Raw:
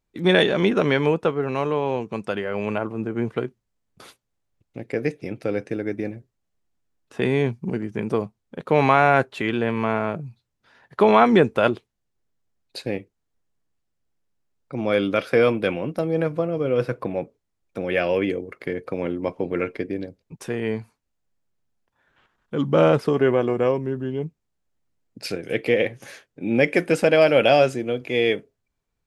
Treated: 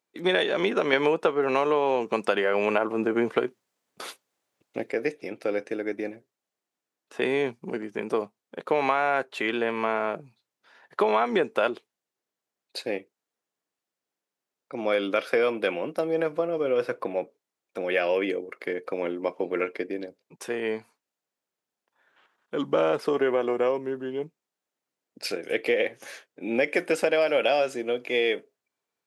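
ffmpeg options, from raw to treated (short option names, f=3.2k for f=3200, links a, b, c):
-filter_complex "[0:a]asplit=3[a][b][c];[a]atrim=end=0.932[d];[b]atrim=start=0.928:end=4.902,asetpts=PTS-STARTPTS,volume=8dB[e];[c]atrim=start=4.898[f];[d][e]acrossfade=d=0.004:c1=hsin:c2=hsin[g];[g][f]acrossfade=d=0.004:c1=hsin:c2=hsin,highpass=360,acompressor=threshold=-19dB:ratio=6"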